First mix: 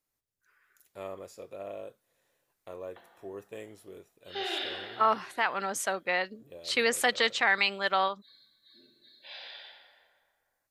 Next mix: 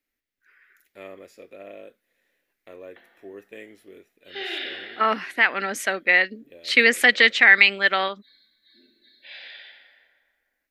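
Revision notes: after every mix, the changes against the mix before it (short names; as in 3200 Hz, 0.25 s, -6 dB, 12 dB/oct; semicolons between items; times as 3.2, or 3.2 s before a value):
second voice +5.5 dB; master: add graphic EQ 125/250/1000/2000/8000 Hz -12/+7/-9/+11/-6 dB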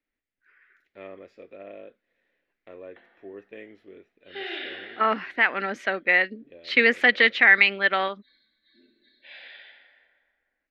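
master: add air absorption 240 m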